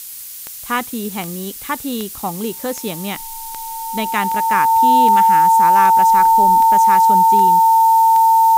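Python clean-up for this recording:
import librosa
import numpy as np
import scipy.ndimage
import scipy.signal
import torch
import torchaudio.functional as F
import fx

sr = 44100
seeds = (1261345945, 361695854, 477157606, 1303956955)

y = fx.fix_declick_ar(x, sr, threshold=10.0)
y = fx.notch(y, sr, hz=900.0, q=30.0)
y = fx.noise_reduce(y, sr, print_start_s=0.13, print_end_s=0.63, reduce_db=28.0)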